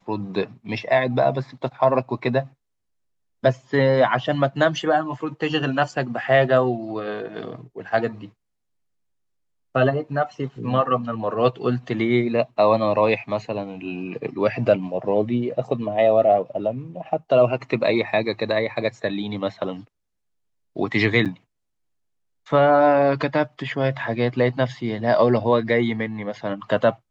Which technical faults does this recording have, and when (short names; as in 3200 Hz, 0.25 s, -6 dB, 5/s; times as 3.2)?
21.25–21.26 gap 7.2 ms